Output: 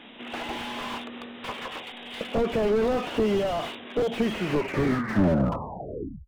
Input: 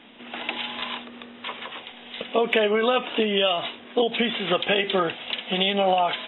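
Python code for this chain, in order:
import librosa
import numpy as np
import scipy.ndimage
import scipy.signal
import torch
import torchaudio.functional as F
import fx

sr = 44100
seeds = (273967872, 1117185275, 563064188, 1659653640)

y = fx.tape_stop_end(x, sr, length_s=2.08)
y = fx.slew_limit(y, sr, full_power_hz=31.0)
y = F.gain(torch.from_numpy(y), 2.5).numpy()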